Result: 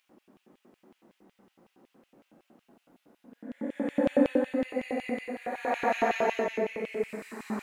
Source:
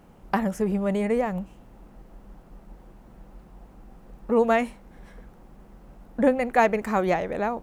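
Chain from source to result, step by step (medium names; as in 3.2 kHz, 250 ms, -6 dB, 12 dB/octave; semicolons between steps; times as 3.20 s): Paulstretch 5.4×, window 0.25 s, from 5.49 s; LFO high-pass square 5.4 Hz 280–2800 Hz; trim -8 dB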